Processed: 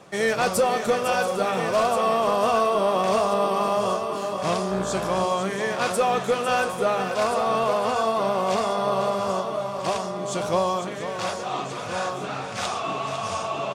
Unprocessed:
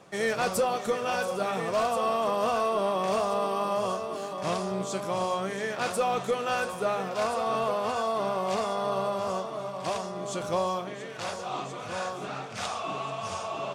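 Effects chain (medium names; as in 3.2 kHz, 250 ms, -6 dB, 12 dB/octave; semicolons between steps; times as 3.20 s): vibrato 7 Hz 16 cents; delay 502 ms -9.5 dB; 4.70–5.21 s: mains buzz 60 Hz, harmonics 29, -41 dBFS -1 dB/octave; trim +5 dB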